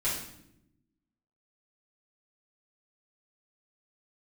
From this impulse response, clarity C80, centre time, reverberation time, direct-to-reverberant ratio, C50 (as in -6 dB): 7.0 dB, 45 ms, 0.80 s, -9.5 dB, 3.5 dB